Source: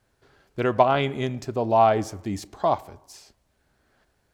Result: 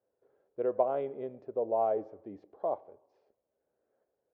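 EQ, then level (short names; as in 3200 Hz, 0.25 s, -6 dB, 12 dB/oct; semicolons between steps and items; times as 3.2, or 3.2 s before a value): band-pass 500 Hz, Q 3.9; air absorption 180 m; -1.5 dB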